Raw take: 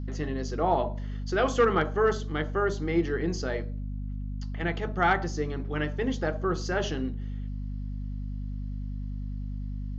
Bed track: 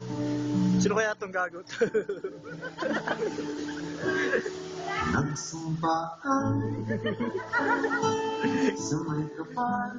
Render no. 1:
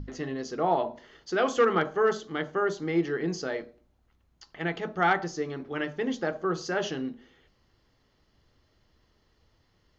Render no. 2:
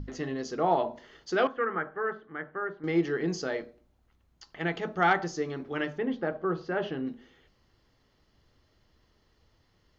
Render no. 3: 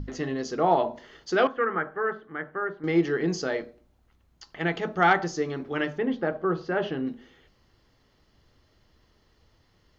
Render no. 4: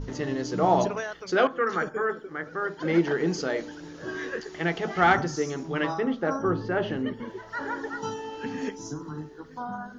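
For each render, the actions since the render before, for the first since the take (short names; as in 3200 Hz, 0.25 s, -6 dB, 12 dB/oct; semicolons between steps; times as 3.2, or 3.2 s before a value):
notches 50/100/150/200/250 Hz
1.47–2.84 ladder low-pass 2000 Hz, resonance 50%; 5.98–7.07 air absorption 370 m
gain +3.5 dB
add bed track -6.5 dB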